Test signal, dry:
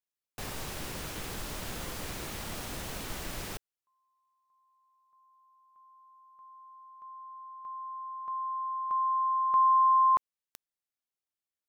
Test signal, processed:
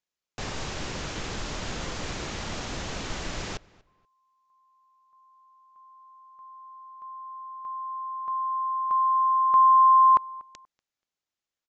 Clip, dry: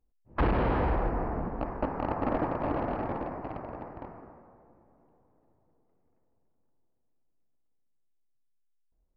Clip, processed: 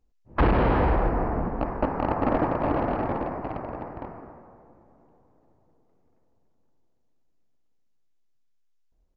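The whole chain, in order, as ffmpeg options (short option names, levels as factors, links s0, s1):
-filter_complex "[0:a]asplit=2[s0][s1];[s1]adelay=240,lowpass=f=3000:p=1,volume=0.0708,asplit=2[s2][s3];[s3]adelay=240,lowpass=f=3000:p=1,volume=0.26[s4];[s2][s4]amix=inputs=2:normalize=0[s5];[s0][s5]amix=inputs=2:normalize=0,aresample=16000,aresample=44100,volume=1.88"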